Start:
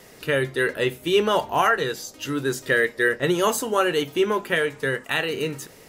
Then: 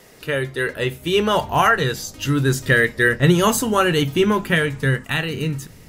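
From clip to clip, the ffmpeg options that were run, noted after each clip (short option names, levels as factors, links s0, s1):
-af "dynaudnorm=f=220:g=11:m=2,asubboost=boost=7.5:cutoff=170"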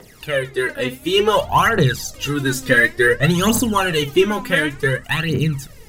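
-af "aphaser=in_gain=1:out_gain=1:delay=4.1:decay=0.72:speed=0.56:type=triangular,volume=0.891"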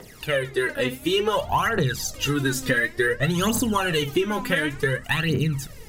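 -af "acompressor=threshold=0.112:ratio=6"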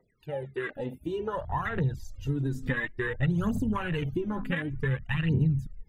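-af "afftfilt=real='re*gte(hypot(re,im),0.00794)':imag='im*gte(hypot(re,im),0.00794)':win_size=1024:overlap=0.75,afwtdn=0.0562,asubboost=boost=3.5:cutoff=230,volume=0.376"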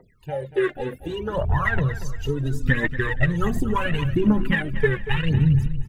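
-af "aphaser=in_gain=1:out_gain=1:delay=2.9:decay=0.7:speed=0.7:type=triangular,aecho=1:1:235|470|705:0.211|0.074|0.0259,volume=1.88"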